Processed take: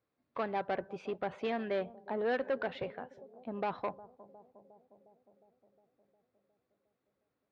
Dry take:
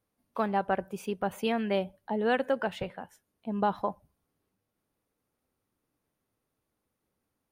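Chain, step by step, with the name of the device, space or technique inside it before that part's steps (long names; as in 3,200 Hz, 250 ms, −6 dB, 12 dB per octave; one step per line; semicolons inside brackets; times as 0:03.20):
analogue delay pedal into a guitar amplifier (bucket-brigade delay 358 ms, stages 2,048, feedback 68%, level −22 dB; tube saturation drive 26 dB, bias 0.3; loudspeaker in its box 92–4,100 Hz, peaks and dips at 95 Hz −5 dB, 200 Hz −9 dB, 880 Hz −4 dB, 3,000 Hz −6 dB)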